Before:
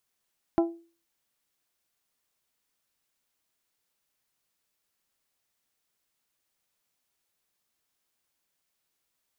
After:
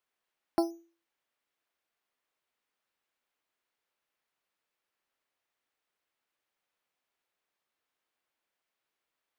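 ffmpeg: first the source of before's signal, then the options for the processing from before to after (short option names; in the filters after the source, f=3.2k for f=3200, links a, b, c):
-f lavfi -i "aevalsrc='0.141*pow(10,-3*t/0.38)*sin(2*PI*336*t)+0.075*pow(10,-3*t/0.234)*sin(2*PI*672*t)+0.0398*pow(10,-3*t/0.206)*sin(2*PI*806.4*t)+0.0211*pow(10,-3*t/0.176)*sin(2*PI*1008*t)+0.0112*pow(10,-3*t/0.144)*sin(2*PI*1344*t)':d=0.89:s=44100"
-filter_complex "[0:a]bass=f=250:g=-11,treble=f=4k:g=-13,acrossover=split=550[a][b];[a]acrusher=samples=10:mix=1:aa=0.000001:lfo=1:lforange=6:lforate=0.93[c];[c][b]amix=inputs=2:normalize=0"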